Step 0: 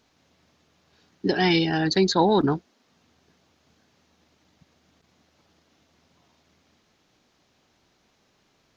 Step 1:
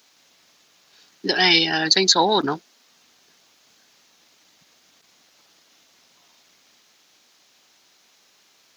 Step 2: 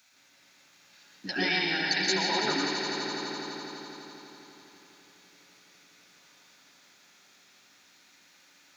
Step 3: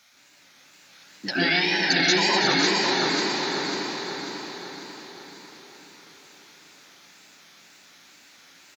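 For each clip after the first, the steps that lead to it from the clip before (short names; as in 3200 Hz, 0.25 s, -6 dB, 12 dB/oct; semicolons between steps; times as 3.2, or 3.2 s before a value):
HPF 130 Hz 6 dB/oct; tilt +3.5 dB/oct; gain +4 dB
compressor 2:1, threshold -28 dBFS, peak gain reduction 9.5 dB; swelling echo 84 ms, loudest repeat 5, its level -11 dB; reverb RT60 1.1 s, pre-delay 0.118 s, DRR 0.5 dB; gain -6.5 dB
wow and flutter 120 cents; on a send: feedback echo 0.545 s, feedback 49%, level -4 dB; on the sum: gain +5.5 dB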